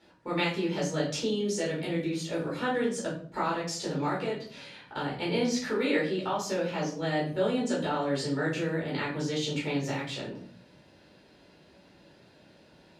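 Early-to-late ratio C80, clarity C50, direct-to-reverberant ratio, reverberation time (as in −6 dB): 10.5 dB, 5.5 dB, −7.0 dB, 0.50 s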